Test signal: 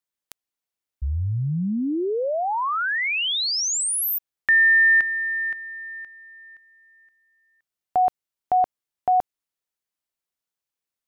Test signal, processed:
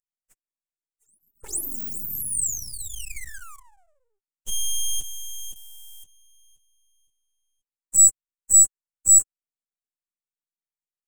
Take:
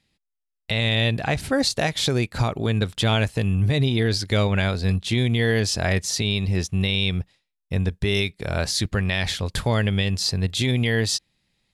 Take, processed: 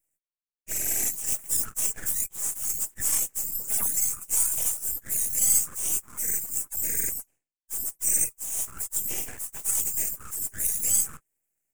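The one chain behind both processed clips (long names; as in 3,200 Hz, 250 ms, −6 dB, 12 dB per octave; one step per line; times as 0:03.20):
frequency axis turned over on the octave scale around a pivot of 1,700 Hz
high-pass filter 940 Hz 24 dB per octave
full-wave rectification
in parallel at −11 dB: bit reduction 6 bits
on the sum: high shelf with overshoot 5,700 Hz +12.5 dB, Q 3
level −8 dB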